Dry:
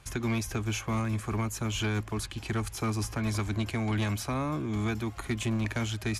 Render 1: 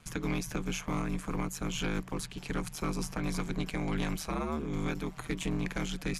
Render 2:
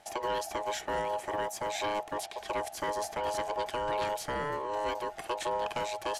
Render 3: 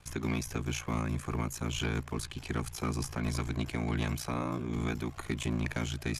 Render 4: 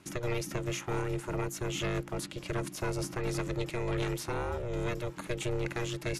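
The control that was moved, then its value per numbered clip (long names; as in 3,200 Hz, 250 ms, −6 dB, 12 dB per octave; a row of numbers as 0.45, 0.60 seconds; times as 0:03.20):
ring modulation, frequency: 78, 730, 29, 240 Hertz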